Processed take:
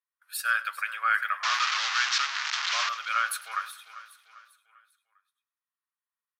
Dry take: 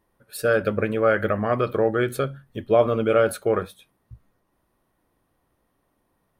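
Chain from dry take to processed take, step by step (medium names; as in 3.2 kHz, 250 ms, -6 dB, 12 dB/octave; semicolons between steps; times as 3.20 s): 1.43–2.89 s: one-bit delta coder 32 kbps, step -17 dBFS; gate with hold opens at -46 dBFS; steep high-pass 1.1 kHz 36 dB/octave; feedback delay 397 ms, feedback 44%, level -15.5 dB; modulated delay 101 ms, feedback 32%, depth 56 cents, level -18.5 dB; trim +1.5 dB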